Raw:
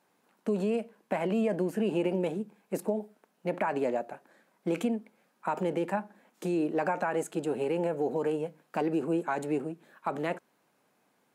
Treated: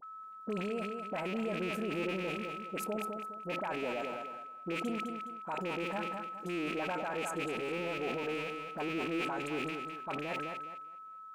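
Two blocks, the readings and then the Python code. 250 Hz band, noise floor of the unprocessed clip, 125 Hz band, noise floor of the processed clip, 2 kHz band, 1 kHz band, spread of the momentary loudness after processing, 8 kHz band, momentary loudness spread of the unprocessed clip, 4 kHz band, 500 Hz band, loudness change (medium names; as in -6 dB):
-7.0 dB, -72 dBFS, -6.5 dB, -49 dBFS, +1.5 dB, -2.5 dB, 6 LU, -1.5 dB, 10 LU, +5.0 dB, -7.0 dB, -5.0 dB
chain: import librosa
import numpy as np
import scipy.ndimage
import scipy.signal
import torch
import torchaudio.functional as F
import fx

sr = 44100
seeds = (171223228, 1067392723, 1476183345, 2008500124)

p1 = fx.rattle_buzz(x, sr, strikes_db=-40.0, level_db=-23.0)
p2 = fx.quant_float(p1, sr, bits=8)
p3 = p2 + 10.0 ** (-36.0 / 20.0) * np.sin(2.0 * np.pi * 1300.0 * np.arange(len(p2)) / sr)
p4 = fx.dispersion(p3, sr, late='highs', ms=40.0, hz=1100.0)
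p5 = p4 + fx.echo_feedback(p4, sr, ms=208, feedback_pct=33, wet_db=-9.5, dry=0)
p6 = fx.sustainer(p5, sr, db_per_s=23.0)
y = F.gain(torch.from_numpy(p6), -8.5).numpy()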